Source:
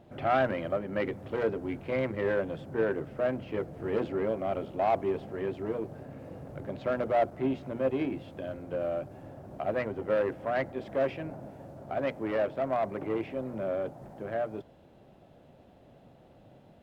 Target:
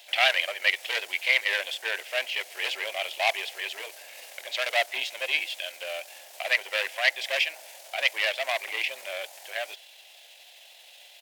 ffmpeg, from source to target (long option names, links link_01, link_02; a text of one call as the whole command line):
ffmpeg -i in.wav -af "highpass=frequency=680:width=0.5412,highpass=frequency=680:width=1.3066,atempo=1.5,aexciter=amount=12:drive=6.7:freq=2000,volume=1.5dB" out.wav